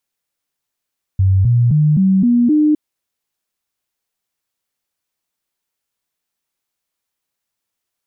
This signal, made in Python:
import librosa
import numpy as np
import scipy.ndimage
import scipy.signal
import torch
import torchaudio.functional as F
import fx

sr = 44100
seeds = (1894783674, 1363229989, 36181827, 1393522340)

y = fx.stepped_sweep(sr, from_hz=95.3, direction='up', per_octave=3, tones=6, dwell_s=0.26, gap_s=0.0, level_db=-9.0)